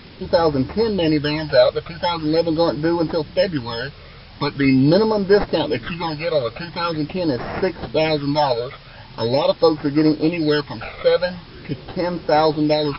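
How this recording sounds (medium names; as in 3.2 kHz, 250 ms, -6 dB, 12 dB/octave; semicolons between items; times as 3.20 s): aliases and images of a low sample rate 4.7 kHz, jitter 0%; phasing stages 12, 0.43 Hz, lowest notch 280–3300 Hz; a quantiser's noise floor 8-bit, dither triangular; MP3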